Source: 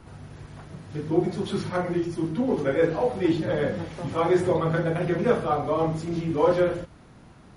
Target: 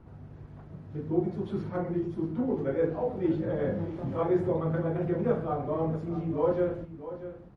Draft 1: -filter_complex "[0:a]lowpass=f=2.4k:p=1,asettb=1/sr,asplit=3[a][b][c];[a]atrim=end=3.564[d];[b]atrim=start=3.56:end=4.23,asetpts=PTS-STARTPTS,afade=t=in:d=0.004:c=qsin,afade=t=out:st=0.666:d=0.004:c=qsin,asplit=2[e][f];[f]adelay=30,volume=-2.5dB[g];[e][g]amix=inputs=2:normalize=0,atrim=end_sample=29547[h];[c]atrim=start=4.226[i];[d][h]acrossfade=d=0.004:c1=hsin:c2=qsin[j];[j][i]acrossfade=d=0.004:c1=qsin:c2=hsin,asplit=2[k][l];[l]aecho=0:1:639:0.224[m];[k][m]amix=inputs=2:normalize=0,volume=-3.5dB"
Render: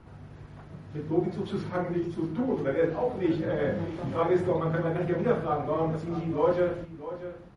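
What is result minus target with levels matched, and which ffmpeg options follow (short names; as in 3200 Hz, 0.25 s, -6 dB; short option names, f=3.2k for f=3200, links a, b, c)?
2000 Hz band +6.0 dB
-filter_complex "[0:a]lowpass=f=620:p=1,asettb=1/sr,asplit=3[a][b][c];[a]atrim=end=3.564[d];[b]atrim=start=3.56:end=4.23,asetpts=PTS-STARTPTS,afade=t=in:d=0.004:c=qsin,afade=t=out:st=0.666:d=0.004:c=qsin,asplit=2[e][f];[f]adelay=30,volume=-2.5dB[g];[e][g]amix=inputs=2:normalize=0,atrim=end_sample=29547[h];[c]atrim=start=4.226[i];[d][h]acrossfade=d=0.004:c1=hsin:c2=qsin[j];[j][i]acrossfade=d=0.004:c1=qsin:c2=hsin,asplit=2[k][l];[l]aecho=0:1:639:0.224[m];[k][m]amix=inputs=2:normalize=0,volume=-3.5dB"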